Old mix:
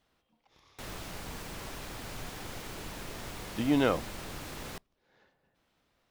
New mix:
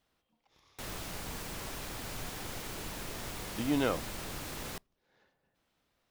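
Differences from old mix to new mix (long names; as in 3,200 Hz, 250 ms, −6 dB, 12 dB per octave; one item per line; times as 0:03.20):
speech −4.0 dB
master: add high-shelf EQ 6,200 Hz +5 dB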